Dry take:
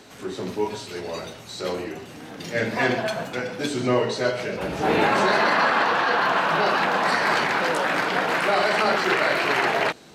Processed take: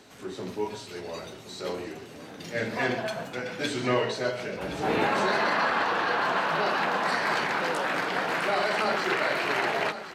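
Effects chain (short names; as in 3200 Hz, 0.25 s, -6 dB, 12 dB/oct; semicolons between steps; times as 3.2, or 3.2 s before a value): 3.46–4.12 bell 2300 Hz +6 dB 2.2 oct; echo 1.07 s -12 dB; gain -5.5 dB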